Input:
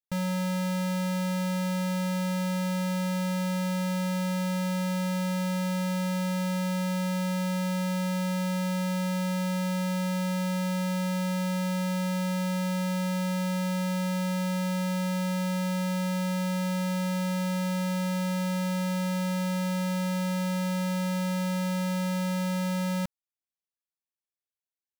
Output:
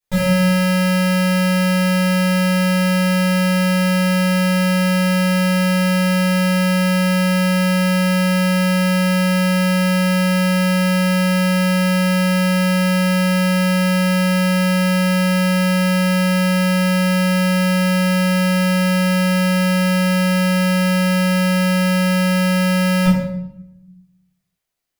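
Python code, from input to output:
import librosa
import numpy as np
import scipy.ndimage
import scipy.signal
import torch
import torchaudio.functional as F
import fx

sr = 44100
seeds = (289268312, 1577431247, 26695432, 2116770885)

y = fx.room_shoebox(x, sr, seeds[0], volume_m3=230.0, walls='mixed', distance_m=4.8)
y = y * 10.0 ** (3.0 / 20.0)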